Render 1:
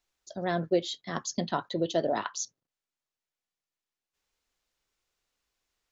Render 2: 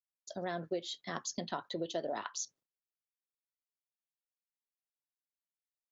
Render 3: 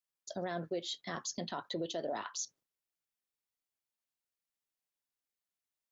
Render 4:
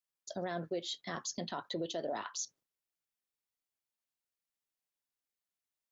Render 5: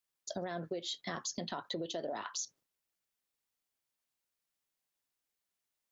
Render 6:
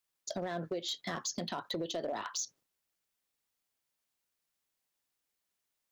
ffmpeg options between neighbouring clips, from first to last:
ffmpeg -i in.wav -af "agate=range=-33dB:threshold=-53dB:ratio=3:detection=peak,lowshelf=frequency=210:gain=-8,acompressor=threshold=-37dB:ratio=2.5" out.wav
ffmpeg -i in.wav -af "alimiter=level_in=6dB:limit=-24dB:level=0:latency=1:release=13,volume=-6dB,volume=2dB" out.wav
ffmpeg -i in.wav -af anull out.wav
ffmpeg -i in.wav -af "acompressor=threshold=-39dB:ratio=6,volume=4dB" out.wav
ffmpeg -i in.wav -af "volume=31.5dB,asoftclip=hard,volume=-31.5dB,volume=2.5dB" out.wav

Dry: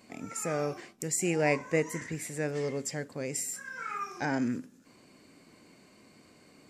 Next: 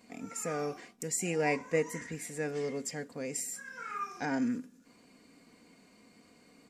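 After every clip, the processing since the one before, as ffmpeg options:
ffmpeg -i in.wav -af "aecho=1:1:4.2:0.47,volume=-3.5dB" out.wav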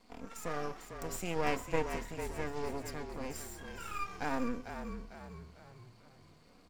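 ffmpeg -i in.wav -filter_complex "[0:a]equalizer=frequency=125:width_type=o:width=1:gain=-4,equalizer=frequency=1000:width_type=o:width=1:gain=6,equalizer=frequency=2000:width_type=o:width=1:gain=-5,equalizer=frequency=4000:width_type=o:width=1:gain=4,equalizer=frequency=8000:width_type=o:width=1:gain=-7,aeval=exprs='max(val(0),0)':channel_layout=same,asplit=6[link_01][link_02][link_03][link_04][link_05][link_06];[link_02]adelay=449,afreqshift=-38,volume=-8dB[link_07];[link_03]adelay=898,afreqshift=-76,volume=-14.9dB[link_08];[link_04]adelay=1347,afreqshift=-114,volume=-21.9dB[link_09];[link_05]adelay=1796,afreqshift=-152,volume=-28.8dB[link_10];[link_06]adelay=2245,afreqshift=-190,volume=-35.7dB[link_11];[link_01][link_07][link_08][link_09][link_10][link_11]amix=inputs=6:normalize=0" out.wav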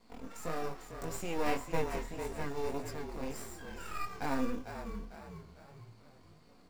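ffmpeg -i in.wav -filter_complex "[0:a]flanger=delay=17.5:depth=5.9:speed=1.7,asplit=2[link_01][link_02];[link_02]acrusher=samples=14:mix=1:aa=0.000001,volume=-8dB[link_03];[link_01][link_03]amix=inputs=2:normalize=0,volume=1dB" out.wav

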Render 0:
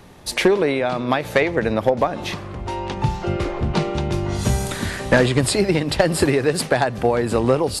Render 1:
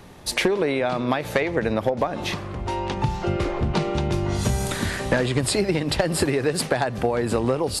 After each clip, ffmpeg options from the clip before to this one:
ffmpeg -i in.wav -af "acompressor=threshold=-18dB:ratio=4" out.wav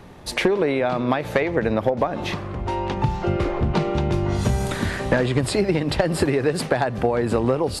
ffmpeg -i in.wav -af "highshelf=frequency=3700:gain=-8.5,volume=2dB" out.wav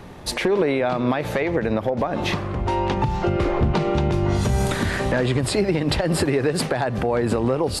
ffmpeg -i in.wav -af "alimiter=limit=-14.5dB:level=0:latency=1:release=126,volume=3.5dB" out.wav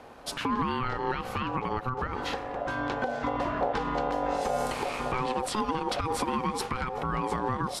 ffmpeg -i in.wav -af "aeval=exprs='val(0)*sin(2*PI*640*n/s)':channel_layout=same,volume=-6dB" out.wav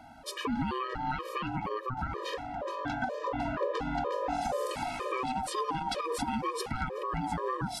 ffmpeg -i in.wav -af "afftfilt=real='re*gt(sin(2*PI*2.1*pts/sr)*(1-2*mod(floor(b*sr/1024/320),2)),0)':imag='im*gt(sin(2*PI*2.1*pts/sr)*(1-2*mod(floor(b*sr/1024/320),2)),0)':win_size=1024:overlap=0.75" out.wav

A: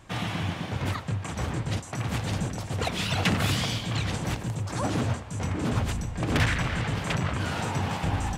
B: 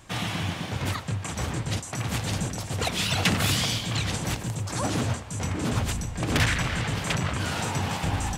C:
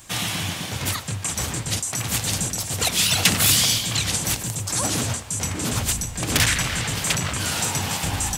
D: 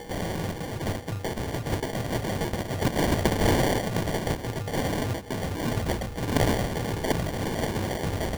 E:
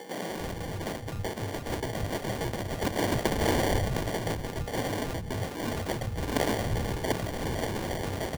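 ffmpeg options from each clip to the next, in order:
ffmpeg -i in.wav -af "highshelf=frequency=3600:gain=8" out.wav
ffmpeg -i in.wav -af "crystalizer=i=3.5:c=0" out.wav
ffmpeg -i in.wav -af "aeval=exprs='val(0)+0.00708*sin(2*PI*8600*n/s)':channel_layout=same,acompressor=mode=upward:threshold=-30dB:ratio=2.5,acrusher=samples=34:mix=1:aa=0.000001,volume=-3.5dB" out.wav
ffmpeg -i in.wav -filter_complex "[0:a]acrossover=split=170[link_01][link_02];[link_01]adelay=300[link_03];[link_03][link_02]amix=inputs=2:normalize=0,volume=-2.5dB" out.wav

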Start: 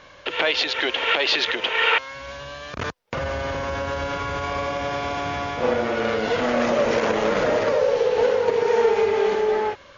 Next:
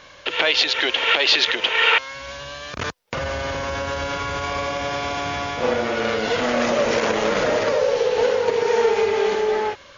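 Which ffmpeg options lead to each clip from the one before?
ffmpeg -i in.wav -af "highshelf=frequency=2800:gain=7.5" out.wav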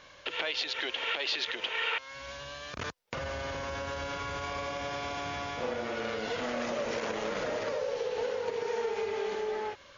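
ffmpeg -i in.wav -af "acompressor=threshold=-25dB:ratio=2,volume=-8.5dB" out.wav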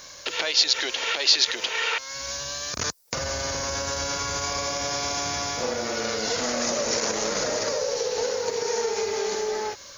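ffmpeg -i in.wav -af "aexciter=amount=9.2:drive=2.2:freq=4500,volume=5.5dB" out.wav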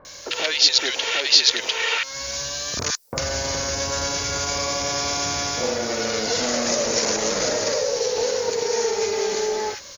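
ffmpeg -i in.wav -filter_complex "[0:a]acrossover=split=1200[link_01][link_02];[link_02]adelay=50[link_03];[link_01][link_03]amix=inputs=2:normalize=0,volume=4dB" out.wav

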